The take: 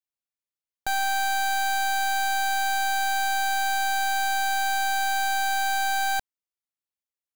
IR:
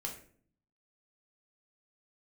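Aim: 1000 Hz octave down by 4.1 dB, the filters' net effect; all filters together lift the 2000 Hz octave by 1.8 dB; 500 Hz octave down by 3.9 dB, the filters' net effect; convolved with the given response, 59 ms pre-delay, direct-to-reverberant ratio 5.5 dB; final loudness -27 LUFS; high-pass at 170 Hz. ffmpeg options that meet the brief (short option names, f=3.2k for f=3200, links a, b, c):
-filter_complex "[0:a]highpass=170,equalizer=f=500:t=o:g=-3.5,equalizer=f=1k:t=o:g=-5,equalizer=f=2k:t=o:g=5.5,asplit=2[a][b];[1:a]atrim=start_sample=2205,adelay=59[c];[b][c]afir=irnorm=-1:irlink=0,volume=-5dB[d];[a][d]amix=inputs=2:normalize=0,volume=-3dB"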